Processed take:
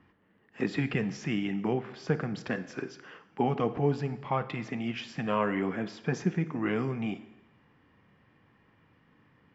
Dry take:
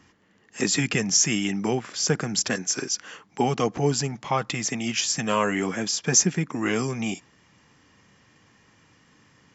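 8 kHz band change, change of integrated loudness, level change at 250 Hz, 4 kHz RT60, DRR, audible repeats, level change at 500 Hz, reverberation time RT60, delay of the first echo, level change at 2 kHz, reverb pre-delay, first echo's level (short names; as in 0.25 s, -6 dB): n/a, -7.5 dB, -4.0 dB, 0.95 s, 12.0 dB, none, -4.0 dB, 0.95 s, none, -7.5 dB, 28 ms, none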